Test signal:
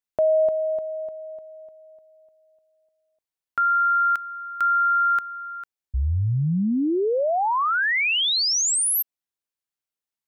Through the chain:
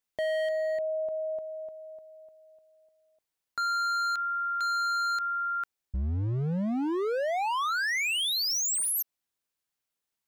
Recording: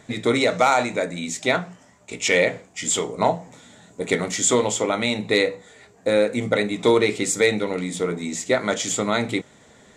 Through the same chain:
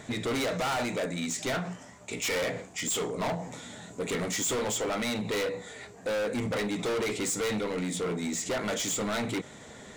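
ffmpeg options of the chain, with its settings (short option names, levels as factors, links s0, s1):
-af "volume=17.8,asoftclip=hard,volume=0.0562,alimiter=level_in=2.37:limit=0.0631:level=0:latency=1:release=33,volume=0.422,volume=1.58"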